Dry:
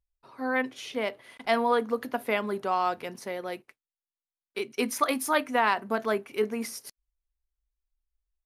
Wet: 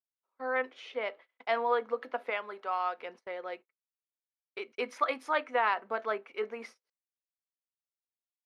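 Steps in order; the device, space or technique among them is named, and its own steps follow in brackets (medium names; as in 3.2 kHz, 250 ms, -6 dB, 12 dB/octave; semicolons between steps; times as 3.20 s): tin-can telephone (band-pass 490–3000 Hz; small resonant body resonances 500/1300/2200 Hz, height 7 dB, ringing for 80 ms); gate -46 dBFS, range -30 dB; 2.30–2.99 s: bass shelf 450 Hz -9 dB; trim -3.5 dB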